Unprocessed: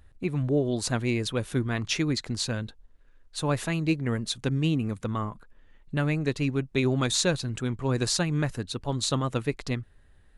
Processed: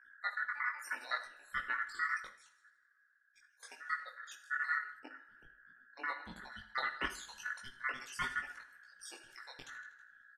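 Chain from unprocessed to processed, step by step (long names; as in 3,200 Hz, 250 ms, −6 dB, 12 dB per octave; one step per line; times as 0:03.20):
time-frequency cells dropped at random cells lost 75%
mains-hum notches 50/100/150/200/250/300/350 Hz
repeating echo 80 ms, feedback 53%, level −15 dB
output level in coarse steps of 15 dB
mains hum 60 Hz, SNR 19 dB
0:02.27–0:03.63: guitar amp tone stack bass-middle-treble 6-0-2
ring modulation 1,600 Hz
on a send at −8 dB: convolution reverb, pre-delay 3 ms
on the sum: multi-voice chorus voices 6, 0.73 Hz, delay 19 ms, depth 4.5 ms
0:04.99–0:06.52: tilt shelving filter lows +6.5 dB, about 1,200 Hz
level +1 dB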